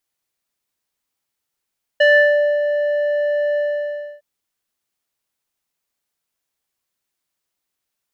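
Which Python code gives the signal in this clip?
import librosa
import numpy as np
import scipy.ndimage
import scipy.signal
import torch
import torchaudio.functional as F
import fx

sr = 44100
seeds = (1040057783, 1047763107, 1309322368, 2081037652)

y = fx.sub_voice(sr, note=74, wave='square', cutoff_hz=1200.0, q=3.6, env_oct=1.0, env_s=0.4, attack_ms=8.5, decay_s=0.59, sustain_db=-7, release_s=0.64, note_s=1.57, slope=12)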